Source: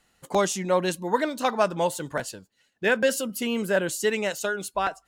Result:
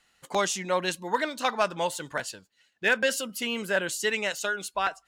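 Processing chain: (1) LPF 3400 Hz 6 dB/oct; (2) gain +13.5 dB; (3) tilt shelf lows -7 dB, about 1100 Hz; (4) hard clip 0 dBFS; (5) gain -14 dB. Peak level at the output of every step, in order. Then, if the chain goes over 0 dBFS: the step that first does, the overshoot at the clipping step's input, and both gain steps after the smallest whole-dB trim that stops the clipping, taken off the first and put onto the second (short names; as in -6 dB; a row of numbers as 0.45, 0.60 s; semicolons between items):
-8.5, +5.0, +3.0, 0.0, -14.0 dBFS; step 2, 3.0 dB; step 2 +10.5 dB, step 5 -11 dB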